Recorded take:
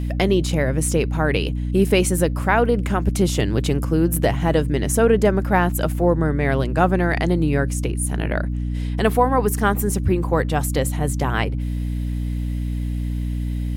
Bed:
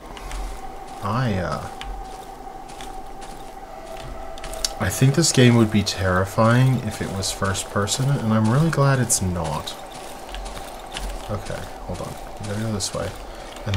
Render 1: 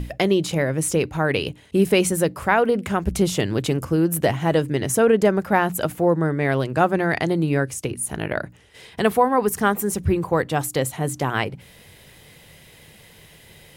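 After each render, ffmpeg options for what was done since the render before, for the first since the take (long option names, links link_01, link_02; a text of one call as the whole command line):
ffmpeg -i in.wav -af "bandreject=frequency=60:width_type=h:width=6,bandreject=frequency=120:width_type=h:width=6,bandreject=frequency=180:width_type=h:width=6,bandreject=frequency=240:width_type=h:width=6,bandreject=frequency=300:width_type=h:width=6" out.wav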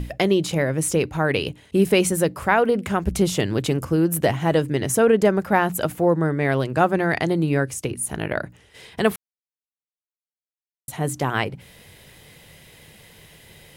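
ffmpeg -i in.wav -filter_complex "[0:a]asplit=3[link_01][link_02][link_03];[link_01]atrim=end=9.16,asetpts=PTS-STARTPTS,afade=type=out:start_time=9.156:duration=0.004:curve=hsin[link_04];[link_02]atrim=start=9.16:end=10.88,asetpts=PTS-STARTPTS,volume=0[link_05];[link_03]atrim=start=10.88,asetpts=PTS-STARTPTS,afade=type=in:duration=0.004:curve=hsin[link_06];[link_04][link_05][link_06]concat=n=3:v=0:a=1" out.wav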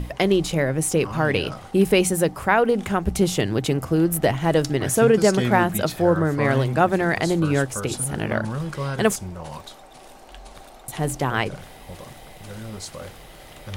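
ffmpeg -i in.wav -i bed.wav -filter_complex "[1:a]volume=-10dB[link_01];[0:a][link_01]amix=inputs=2:normalize=0" out.wav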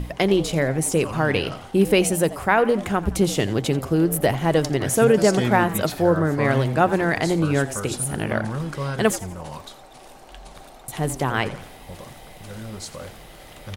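ffmpeg -i in.wav -filter_complex "[0:a]asplit=5[link_01][link_02][link_03][link_04][link_05];[link_02]adelay=86,afreqshift=120,volume=-17dB[link_06];[link_03]adelay=172,afreqshift=240,volume=-24.1dB[link_07];[link_04]adelay=258,afreqshift=360,volume=-31.3dB[link_08];[link_05]adelay=344,afreqshift=480,volume=-38.4dB[link_09];[link_01][link_06][link_07][link_08][link_09]amix=inputs=5:normalize=0" out.wav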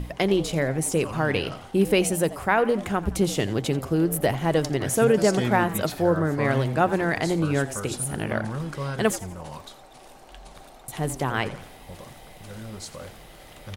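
ffmpeg -i in.wav -af "volume=-3dB" out.wav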